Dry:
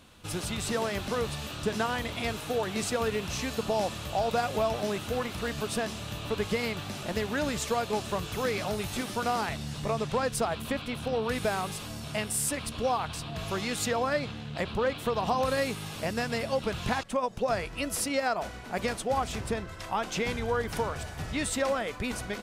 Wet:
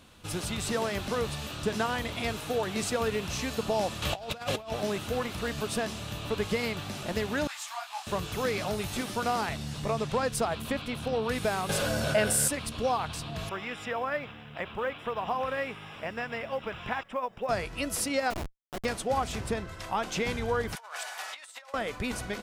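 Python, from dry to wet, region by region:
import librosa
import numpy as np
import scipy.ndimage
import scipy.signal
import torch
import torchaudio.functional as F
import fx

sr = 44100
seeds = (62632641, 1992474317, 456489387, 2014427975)

y = fx.chain(x, sr, fx.peak_eq(hz=2700.0, db=5.0, octaves=2.0),
    fx.over_compress(threshold_db=-33.0, ratio=-0.5), at=(4.02, 4.72))
y = fx.chain(y, sr, fx.ellip_highpass(hz=760.0, order=4, stop_db=40),
    fx.detune_double(cents=55), at=(7.47, 8.07))
y = fx.chain(y, sr, fx.small_body(hz=(560.0, 1500.0), ring_ms=30, db=16),
    fx.env_flatten(amount_pct=50), at=(11.69, 12.48))
y = fx.chain(y, sr, fx.savgol(points=25),
    fx.low_shelf(hz=460.0, db=-10.5),
    fx.quant_companded(bits=8), at=(13.49, 17.49))
y = fx.chain(y, sr, fx.highpass(hz=44.0, slope=12),
    fx.schmitt(flips_db=-28.5), at=(18.3, 18.85))
y = fx.chain(y, sr, fx.highpass(hz=740.0, slope=24),
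    fx.over_compress(threshold_db=-41.0, ratio=-0.5), at=(20.75, 21.74))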